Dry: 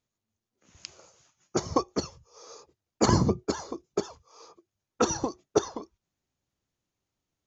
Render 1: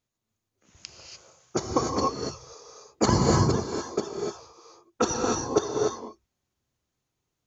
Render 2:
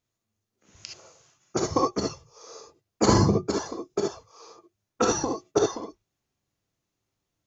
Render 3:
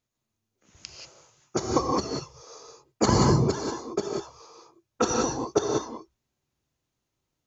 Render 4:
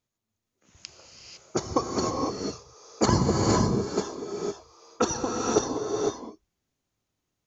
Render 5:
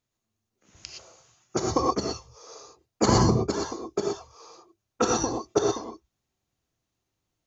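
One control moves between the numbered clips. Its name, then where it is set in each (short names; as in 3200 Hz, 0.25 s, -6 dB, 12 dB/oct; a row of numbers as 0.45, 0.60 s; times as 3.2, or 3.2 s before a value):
non-linear reverb, gate: 320, 90, 210, 530, 140 ms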